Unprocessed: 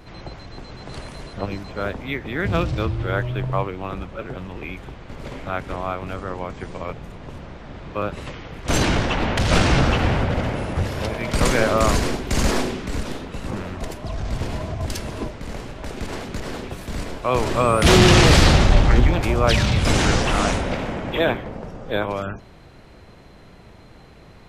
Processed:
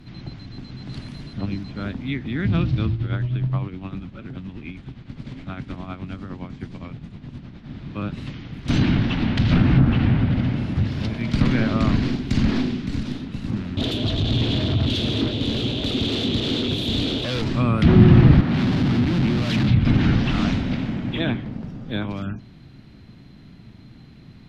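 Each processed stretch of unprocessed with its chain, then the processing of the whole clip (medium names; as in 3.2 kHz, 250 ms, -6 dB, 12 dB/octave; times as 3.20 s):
2.93–7.67 s: tremolo 9.7 Hz, depth 59% + brick-wall FIR low-pass 10 kHz
13.77–17.42 s: FFT filter 110 Hz 0 dB, 170 Hz -12 dB, 270 Hz -6 dB, 480 Hz -2 dB, 1.4 kHz -29 dB, 2 kHz -24 dB, 3.5 kHz +2 dB, 5 kHz -17 dB, 8.6 kHz -9 dB, 13 kHz -1 dB + overdrive pedal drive 37 dB, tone 5.4 kHz, clips at -12.5 dBFS
18.41–19.68 s: band-pass 170–5900 Hz + Schmitt trigger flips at -25 dBFS
whole clip: graphic EQ 125/250/500/1000/4000/8000 Hz +9/+11/-9/-4/+6/-7 dB; low-pass that closes with the level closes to 1.4 kHz, closed at -5.5 dBFS; trim -5 dB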